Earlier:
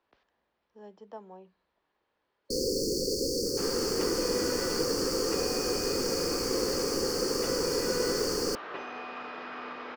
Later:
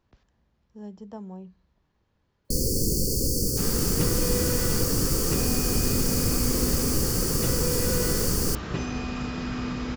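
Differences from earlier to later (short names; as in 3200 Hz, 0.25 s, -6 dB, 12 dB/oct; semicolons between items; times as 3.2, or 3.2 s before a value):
first sound -5.5 dB; second sound: remove band-pass 970 Hz, Q 0.54; master: remove three-band isolator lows -23 dB, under 340 Hz, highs -20 dB, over 4800 Hz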